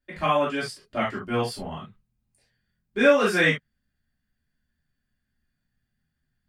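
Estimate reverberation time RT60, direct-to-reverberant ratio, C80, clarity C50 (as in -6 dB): no single decay rate, -8.5 dB, 24.0 dB, 6.0 dB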